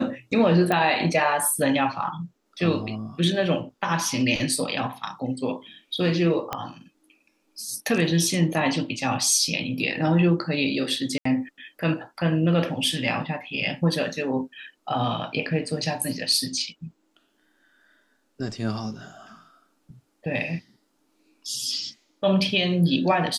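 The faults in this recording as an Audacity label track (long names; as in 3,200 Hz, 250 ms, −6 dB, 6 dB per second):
0.720000	0.720000	click −11 dBFS
6.530000	6.530000	click −12 dBFS
11.180000	11.250000	drop-out 74 ms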